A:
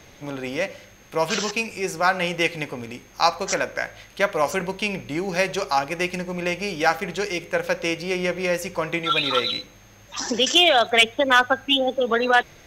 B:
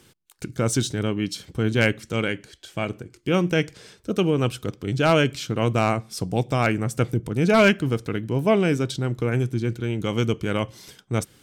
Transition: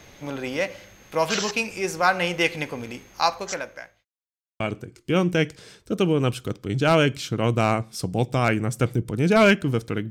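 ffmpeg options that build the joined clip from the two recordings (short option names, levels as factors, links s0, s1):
-filter_complex "[0:a]apad=whole_dur=10.1,atrim=end=10.1,asplit=2[s0][s1];[s0]atrim=end=4.05,asetpts=PTS-STARTPTS,afade=t=out:st=3.01:d=1.04[s2];[s1]atrim=start=4.05:end=4.6,asetpts=PTS-STARTPTS,volume=0[s3];[1:a]atrim=start=2.78:end=8.28,asetpts=PTS-STARTPTS,afade=t=in:d=0.004:c=hsin[s4];[s2][s3][s4]concat=n=3:v=0:a=1"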